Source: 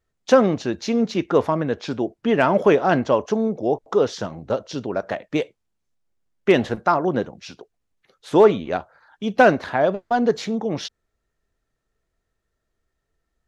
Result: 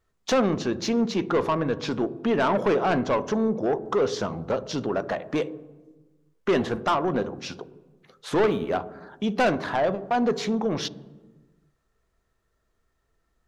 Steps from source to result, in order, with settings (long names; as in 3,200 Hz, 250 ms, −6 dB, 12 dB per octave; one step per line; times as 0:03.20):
0:08.38–0:08.78: running median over 5 samples
parametric band 1,100 Hz +5.5 dB 0.59 octaves
in parallel at +2 dB: downward compressor, threshold −27 dBFS, peak gain reduction 18 dB
on the sum: soft clipping −12.5 dBFS, distortion −10 dB
on a send at −15 dB: convolution reverb RT60 1.2 s, pre-delay 3 ms
on the sum: level −4.5 dB